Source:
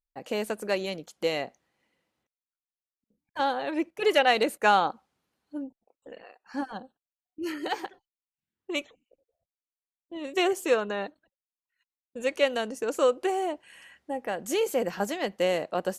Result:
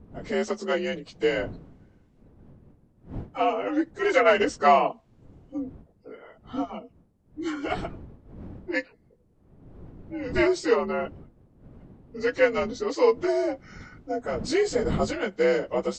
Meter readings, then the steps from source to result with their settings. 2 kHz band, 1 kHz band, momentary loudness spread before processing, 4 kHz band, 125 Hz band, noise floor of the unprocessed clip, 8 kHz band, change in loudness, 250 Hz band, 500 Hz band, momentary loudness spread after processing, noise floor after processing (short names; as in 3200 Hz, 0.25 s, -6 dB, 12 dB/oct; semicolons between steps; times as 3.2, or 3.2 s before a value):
+2.0 dB, +1.0 dB, 17 LU, -3.5 dB, n/a, under -85 dBFS, -1.0 dB, +2.5 dB, +4.0 dB, +3.5 dB, 18 LU, -62 dBFS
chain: inharmonic rescaling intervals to 87%; wind noise 210 Hz -47 dBFS; gain +4.5 dB